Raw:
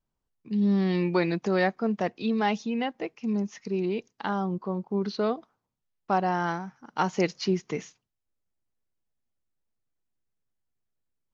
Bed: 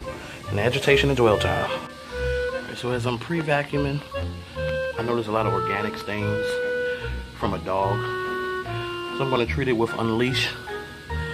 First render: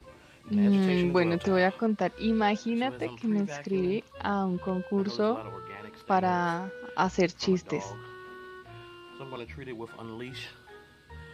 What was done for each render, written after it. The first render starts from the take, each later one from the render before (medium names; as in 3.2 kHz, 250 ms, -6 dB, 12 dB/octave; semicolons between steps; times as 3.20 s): add bed -17.5 dB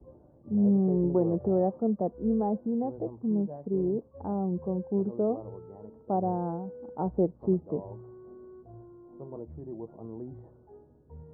inverse Chebyshev low-pass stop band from 2.4 kHz, stop band 60 dB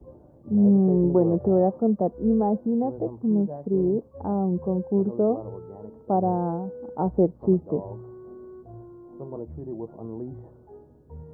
trim +5.5 dB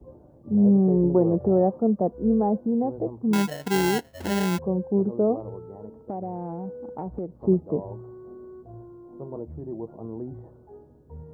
3.33–4.59 s: sample-rate reducer 1.2 kHz; 5.39–7.35 s: compression, threshold -28 dBFS